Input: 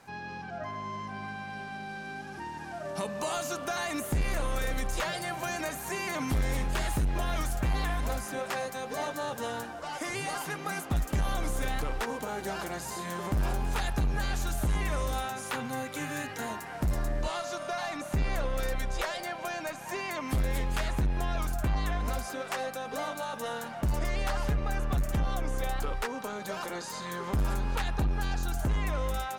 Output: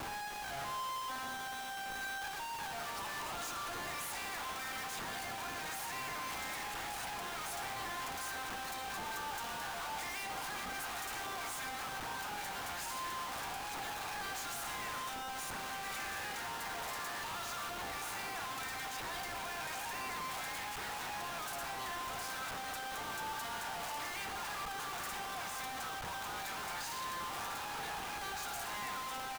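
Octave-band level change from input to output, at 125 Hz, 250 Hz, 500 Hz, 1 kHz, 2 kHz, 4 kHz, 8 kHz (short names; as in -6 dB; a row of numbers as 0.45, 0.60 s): -22.0, -15.5, -12.5, -3.5, -3.5, -1.5, -2.5 dB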